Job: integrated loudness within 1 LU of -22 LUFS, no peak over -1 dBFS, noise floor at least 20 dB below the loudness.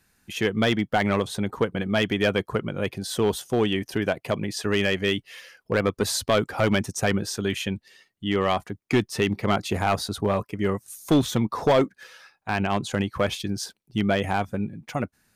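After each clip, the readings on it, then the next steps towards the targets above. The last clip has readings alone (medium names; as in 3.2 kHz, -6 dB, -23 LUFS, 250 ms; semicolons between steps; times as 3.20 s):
clipped samples 0.6%; clipping level -13.5 dBFS; loudness -25.5 LUFS; peak level -13.5 dBFS; loudness target -22.0 LUFS
-> clip repair -13.5 dBFS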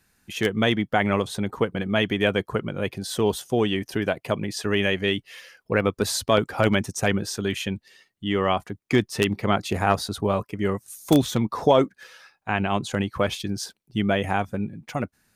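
clipped samples 0.0%; loudness -24.5 LUFS; peak level -4.5 dBFS; loudness target -22.0 LUFS
-> trim +2.5 dB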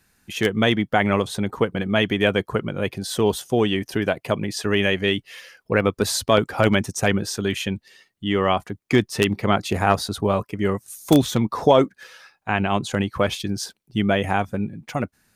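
loudness -22.0 LUFS; peak level -2.0 dBFS; noise floor -70 dBFS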